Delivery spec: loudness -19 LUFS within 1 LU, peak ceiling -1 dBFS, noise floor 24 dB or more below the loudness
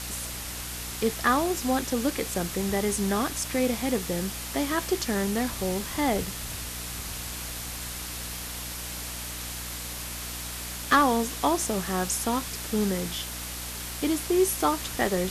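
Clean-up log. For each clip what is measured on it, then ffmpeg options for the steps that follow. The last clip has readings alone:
hum 60 Hz; harmonics up to 300 Hz; hum level -39 dBFS; noise floor -36 dBFS; noise floor target -52 dBFS; loudness -28.0 LUFS; peak -11.0 dBFS; loudness target -19.0 LUFS
-> -af "bandreject=f=60:t=h:w=4,bandreject=f=120:t=h:w=4,bandreject=f=180:t=h:w=4,bandreject=f=240:t=h:w=4,bandreject=f=300:t=h:w=4"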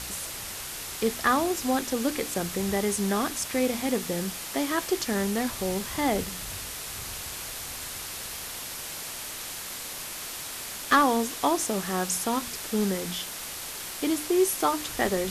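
hum none; noise floor -37 dBFS; noise floor target -53 dBFS
-> -af "afftdn=nr=16:nf=-37"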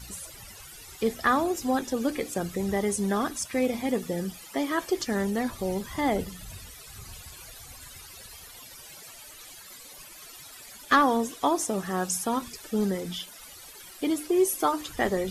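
noise floor -47 dBFS; noise floor target -52 dBFS
-> -af "afftdn=nr=6:nf=-47"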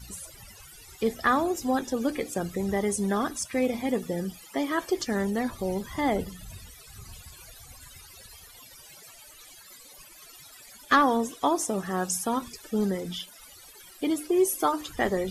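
noise floor -50 dBFS; noise floor target -52 dBFS
-> -af "afftdn=nr=6:nf=-50"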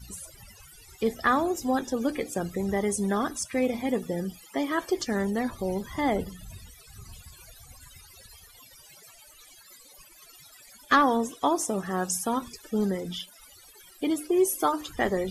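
noise floor -53 dBFS; loudness -27.5 LUFS; peak -11.5 dBFS; loudness target -19.0 LUFS
-> -af "volume=8.5dB"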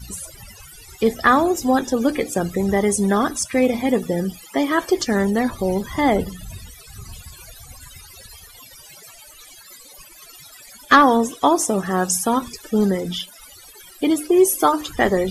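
loudness -19.0 LUFS; peak -3.0 dBFS; noise floor -45 dBFS

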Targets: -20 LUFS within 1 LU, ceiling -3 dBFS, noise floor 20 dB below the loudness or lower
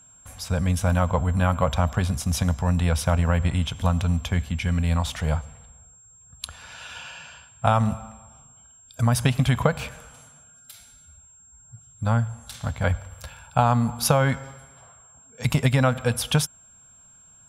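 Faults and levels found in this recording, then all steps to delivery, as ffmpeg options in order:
steady tone 7500 Hz; tone level -50 dBFS; loudness -24.0 LUFS; peak -4.0 dBFS; loudness target -20.0 LUFS
-> -af "bandreject=f=7.5k:w=30"
-af "volume=4dB,alimiter=limit=-3dB:level=0:latency=1"

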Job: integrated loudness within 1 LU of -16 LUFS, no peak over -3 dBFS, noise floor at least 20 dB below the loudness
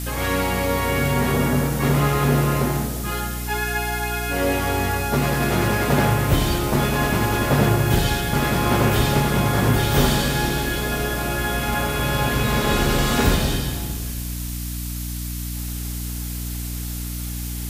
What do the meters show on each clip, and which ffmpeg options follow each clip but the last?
hum 60 Hz; harmonics up to 300 Hz; hum level -26 dBFS; noise floor -28 dBFS; noise floor target -42 dBFS; loudness -21.5 LUFS; peak -3.5 dBFS; loudness target -16.0 LUFS
-> -af "bandreject=f=60:t=h:w=6,bandreject=f=120:t=h:w=6,bandreject=f=180:t=h:w=6,bandreject=f=240:t=h:w=6,bandreject=f=300:t=h:w=6"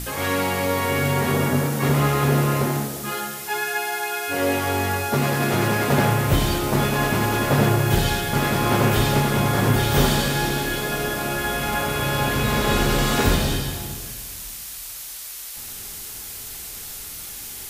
hum none; noise floor -35 dBFS; noise floor target -42 dBFS
-> -af "afftdn=nr=7:nf=-35"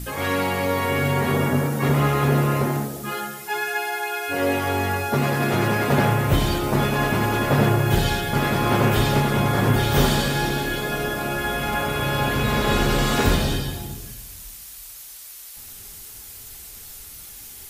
noise floor -40 dBFS; noise floor target -42 dBFS
-> -af "afftdn=nr=6:nf=-40"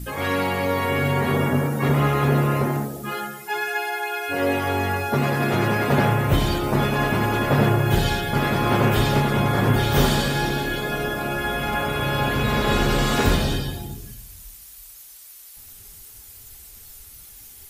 noise floor -44 dBFS; loudness -21.5 LUFS; peak -5.0 dBFS; loudness target -16.0 LUFS
-> -af "volume=5.5dB,alimiter=limit=-3dB:level=0:latency=1"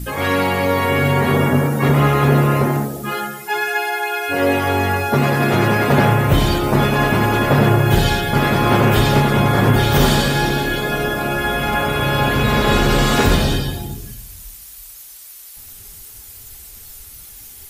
loudness -16.5 LUFS; peak -3.0 dBFS; noise floor -39 dBFS

